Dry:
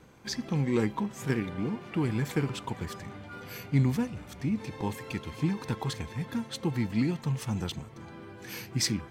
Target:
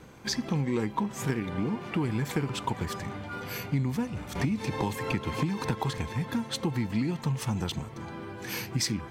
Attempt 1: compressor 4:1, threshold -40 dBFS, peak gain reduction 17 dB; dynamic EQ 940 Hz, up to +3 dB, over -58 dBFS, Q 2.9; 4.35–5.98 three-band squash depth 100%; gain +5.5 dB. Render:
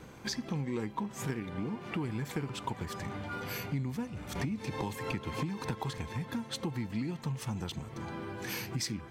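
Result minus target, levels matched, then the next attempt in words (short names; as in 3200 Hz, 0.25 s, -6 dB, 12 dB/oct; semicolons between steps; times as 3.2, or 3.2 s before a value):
compressor: peak gain reduction +6.5 dB
compressor 4:1, threshold -31.5 dBFS, peak gain reduction 10.5 dB; dynamic EQ 940 Hz, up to +3 dB, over -58 dBFS, Q 2.9; 4.35–5.98 three-band squash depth 100%; gain +5.5 dB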